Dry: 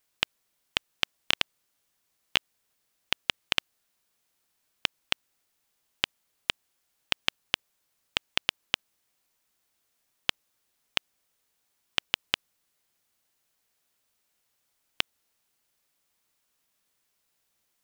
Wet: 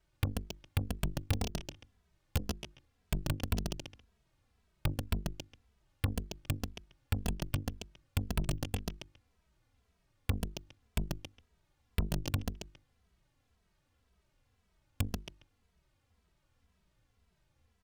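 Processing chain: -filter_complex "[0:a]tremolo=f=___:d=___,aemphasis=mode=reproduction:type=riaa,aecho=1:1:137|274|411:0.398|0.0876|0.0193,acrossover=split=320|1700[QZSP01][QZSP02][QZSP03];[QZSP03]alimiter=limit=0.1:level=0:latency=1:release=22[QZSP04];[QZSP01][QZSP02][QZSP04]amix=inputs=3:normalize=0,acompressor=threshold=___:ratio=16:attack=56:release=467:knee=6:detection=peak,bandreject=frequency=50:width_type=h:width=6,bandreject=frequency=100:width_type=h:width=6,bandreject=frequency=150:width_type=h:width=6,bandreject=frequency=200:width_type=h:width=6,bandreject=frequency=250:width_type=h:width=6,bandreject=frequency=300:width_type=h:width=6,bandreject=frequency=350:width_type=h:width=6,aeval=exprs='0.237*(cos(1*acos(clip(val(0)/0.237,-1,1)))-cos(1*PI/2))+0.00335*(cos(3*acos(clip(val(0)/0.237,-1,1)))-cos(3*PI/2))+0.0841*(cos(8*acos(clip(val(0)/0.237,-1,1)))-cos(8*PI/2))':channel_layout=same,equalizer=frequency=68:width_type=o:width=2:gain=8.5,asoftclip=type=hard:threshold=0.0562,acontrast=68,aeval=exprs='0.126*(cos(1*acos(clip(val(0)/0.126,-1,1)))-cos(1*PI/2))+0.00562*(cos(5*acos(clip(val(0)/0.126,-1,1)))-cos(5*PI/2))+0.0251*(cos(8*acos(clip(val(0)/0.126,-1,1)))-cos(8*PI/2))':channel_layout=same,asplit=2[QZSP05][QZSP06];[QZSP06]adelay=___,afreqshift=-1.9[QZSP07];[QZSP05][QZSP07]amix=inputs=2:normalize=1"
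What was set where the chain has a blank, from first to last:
270, 0.519, 0.00891, 2.7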